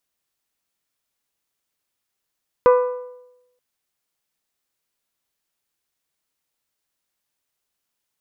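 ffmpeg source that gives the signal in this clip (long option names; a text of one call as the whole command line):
ffmpeg -f lavfi -i "aevalsrc='0.398*pow(10,-3*t/0.91)*sin(2*PI*497*t)+0.178*pow(10,-3*t/0.739)*sin(2*PI*994*t)+0.0794*pow(10,-3*t/0.7)*sin(2*PI*1192.8*t)+0.0355*pow(10,-3*t/0.654)*sin(2*PI*1491*t)+0.0158*pow(10,-3*t/0.6)*sin(2*PI*1988*t)+0.00708*pow(10,-3*t/0.562)*sin(2*PI*2485*t)':duration=0.93:sample_rate=44100" out.wav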